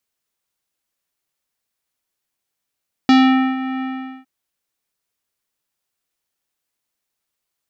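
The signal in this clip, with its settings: synth note square C4 24 dB/oct, low-pass 2500 Hz, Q 1.1, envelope 1 oct, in 0.28 s, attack 1.5 ms, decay 0.47 s, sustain -14 dB, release 0.43 s, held 0.73 s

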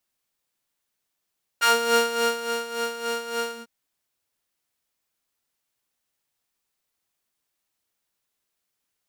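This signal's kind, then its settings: synth patch with tremolo A#4, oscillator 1 saw, interval +19 st, detune 13 cents, oscillator 2 level 0 dB, sub -6.5 dB, filter highpass, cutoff 160 Hz, Q 1.4, filter envelope 3.5 oct, filter decay 0.14 s, attack 19 ms, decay 0.91 s, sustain -10.5 dB, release 0.15 s, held 1.90 s, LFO 3.5 Hz, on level 10 dB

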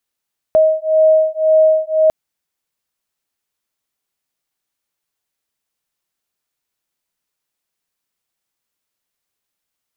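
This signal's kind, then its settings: beating tones 629 Hz, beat 1.9 Hz, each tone -12.5 dBFS 1.55 s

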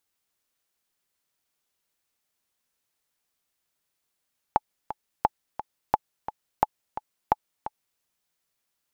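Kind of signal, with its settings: metronome 174 bpm, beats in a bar 2, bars 5, 856 Hz, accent 12.5 dB -5.5 dBFS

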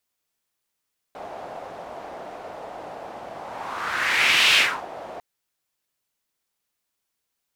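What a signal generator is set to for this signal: whoosh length 4.05 s, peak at 3.41, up 1.31 s, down 0.31 s, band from 690 Hz, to 2800 Hz, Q 2.7, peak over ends 20.5 dB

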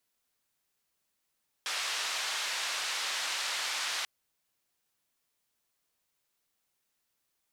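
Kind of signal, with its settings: noise band 920–5000 Hz, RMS -34 dBFS 2.39 s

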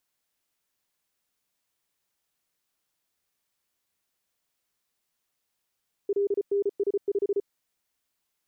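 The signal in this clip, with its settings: Morse "LNS5" 34 wpm 402 Hz -21.5 dBFS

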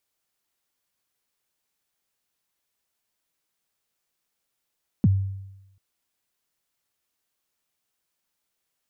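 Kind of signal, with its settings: kick drum length 0.74 s, from 260 Hz, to 97 Hz, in 32 ms, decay 0.95 s, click off, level -12.5 dB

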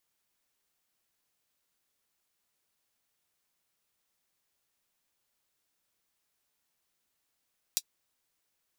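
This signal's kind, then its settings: closed hi-hat, high-pass 4400 Hz, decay 0.06 s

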